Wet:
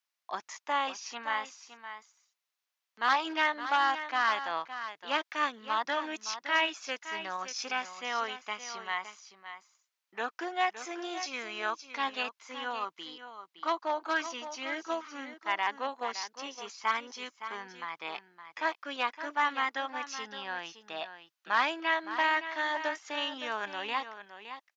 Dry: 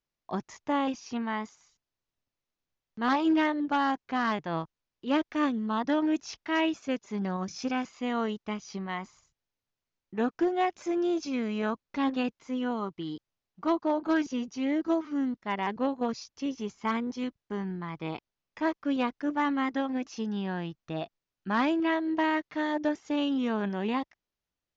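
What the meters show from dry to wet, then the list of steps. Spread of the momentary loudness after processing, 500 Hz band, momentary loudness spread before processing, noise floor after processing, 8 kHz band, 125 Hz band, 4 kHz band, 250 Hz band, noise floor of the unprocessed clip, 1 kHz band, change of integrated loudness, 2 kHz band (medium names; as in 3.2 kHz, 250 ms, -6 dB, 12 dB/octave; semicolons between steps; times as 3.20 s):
15 LU, -6.5 dB, 10 LU, under -85 dBFS, no reading, under -20 dB, +5.0 dB, -16.5 dB, under -85 dBFS, +1.0 dB, -2.5 dB, +4.5 dB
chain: high-pass 1 kHz 12 dB/octave; on a send: delay 565 ms -11 dB; on the sum: trim +4.5 dB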